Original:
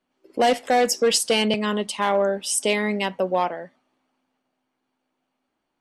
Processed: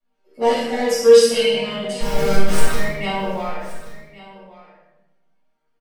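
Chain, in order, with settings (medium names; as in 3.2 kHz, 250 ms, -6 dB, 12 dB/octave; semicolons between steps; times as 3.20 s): 2.00–2.78 s: Schmitt trigger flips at -22 dBFS; chord resonator D#3 major, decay 0.52 s; vibrato 6.4 Hz 20 cents; delay 1126 ms -18 dB; simulated room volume 320 m³, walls mixed, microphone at 6.8 m; trim +4 dB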